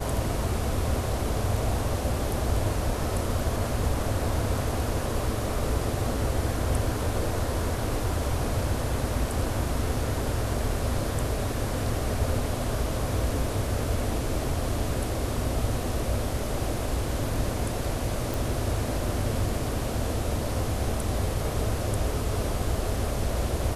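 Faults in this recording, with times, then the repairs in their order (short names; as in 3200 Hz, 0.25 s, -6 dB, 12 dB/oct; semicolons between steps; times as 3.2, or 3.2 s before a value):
18.34 pop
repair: de-click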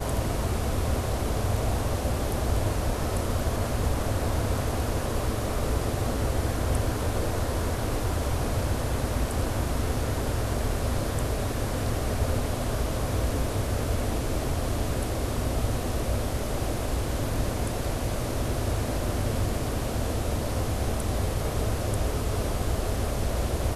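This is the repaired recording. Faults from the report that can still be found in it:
none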